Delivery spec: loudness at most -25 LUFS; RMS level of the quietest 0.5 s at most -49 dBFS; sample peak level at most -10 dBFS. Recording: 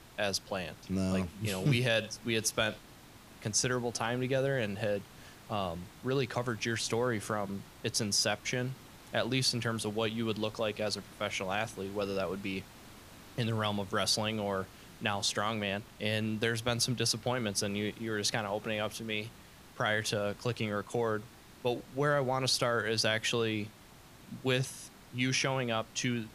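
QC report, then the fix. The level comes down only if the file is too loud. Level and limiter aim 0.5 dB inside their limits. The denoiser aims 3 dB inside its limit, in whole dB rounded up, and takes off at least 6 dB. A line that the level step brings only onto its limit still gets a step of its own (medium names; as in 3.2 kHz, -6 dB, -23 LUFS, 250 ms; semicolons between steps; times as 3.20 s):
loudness -32.5 LUFS: pass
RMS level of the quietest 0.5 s -55 dBFS: pass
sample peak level -13.0 dBFS: pass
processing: none needed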